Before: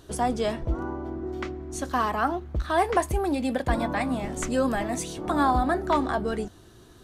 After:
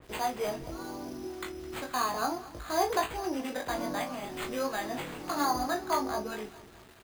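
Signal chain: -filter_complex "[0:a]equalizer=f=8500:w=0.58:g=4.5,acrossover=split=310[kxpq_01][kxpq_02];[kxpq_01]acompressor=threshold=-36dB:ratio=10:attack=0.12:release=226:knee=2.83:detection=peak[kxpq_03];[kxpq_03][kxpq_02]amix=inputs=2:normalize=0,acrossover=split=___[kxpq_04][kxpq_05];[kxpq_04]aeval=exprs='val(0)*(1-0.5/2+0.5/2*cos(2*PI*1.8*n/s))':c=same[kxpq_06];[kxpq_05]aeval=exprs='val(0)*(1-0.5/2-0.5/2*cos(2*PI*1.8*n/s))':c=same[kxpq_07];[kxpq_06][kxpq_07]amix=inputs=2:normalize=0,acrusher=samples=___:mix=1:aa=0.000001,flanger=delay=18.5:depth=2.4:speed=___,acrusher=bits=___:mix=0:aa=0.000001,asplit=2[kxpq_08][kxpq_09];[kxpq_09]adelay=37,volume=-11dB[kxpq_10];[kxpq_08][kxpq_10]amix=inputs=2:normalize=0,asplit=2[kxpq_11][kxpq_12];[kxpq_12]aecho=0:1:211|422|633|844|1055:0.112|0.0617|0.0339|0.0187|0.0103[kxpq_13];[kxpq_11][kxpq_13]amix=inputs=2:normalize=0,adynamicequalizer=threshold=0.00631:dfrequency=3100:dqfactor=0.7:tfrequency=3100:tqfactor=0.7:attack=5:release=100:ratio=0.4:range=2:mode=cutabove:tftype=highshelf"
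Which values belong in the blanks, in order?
840, 8, 0.65, 8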